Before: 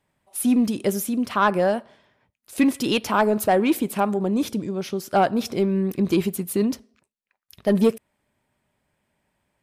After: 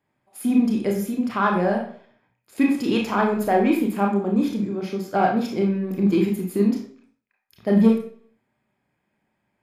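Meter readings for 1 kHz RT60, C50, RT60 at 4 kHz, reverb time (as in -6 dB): 0.50 s, 5.5 dB, 0.45 s, 0.50 s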